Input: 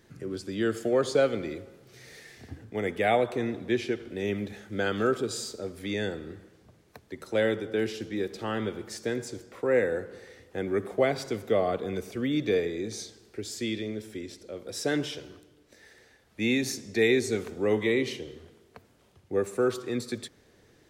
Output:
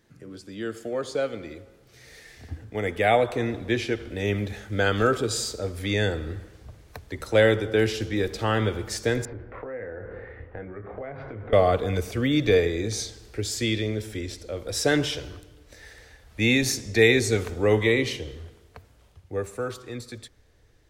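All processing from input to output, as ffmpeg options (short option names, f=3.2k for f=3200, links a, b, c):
-filter_complex "[0:a]asettb=1/sr,asplit=3[a][b][c];[a]atrim=end=9.254[d];[b]atrim=start=9.25:end=11.53,asetpts=PTS-STARTPTS,afade=t=in:d=0.004:c=qsin,afade=t=out:st=2.276:d=0.004:c=qsin,lowpass=f=2k:w=0.5412,lowpass=f=2k:w=1.3066,acompressor=threshold=-41dB:ratio=5:attack=3.2:release=140:knee=1:detection=peak,asplit=2[e][f];[f]adelay=27,volume=-8dB[g];[e][g]amix=inputs=2:normalize=0,atrim=end_sample=100548[h];[c]atrim=start=11.526[i];[d][h]acrossfade=d=0.004:c1=hsin:c2=qsin[j];[j][i]acrossfade=d=0.004:c1=qsin:c2=hsin,bandreject=f=380:w=12,asubboost=boost=9:cutoff=64,dynaudnorm=f=300:g=17:m=14dB,volume=-4dB"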